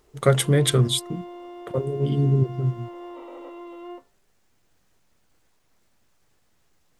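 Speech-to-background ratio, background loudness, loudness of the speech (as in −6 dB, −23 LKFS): 17.5 dB, −40.5 LKFS, −23.0 LKFS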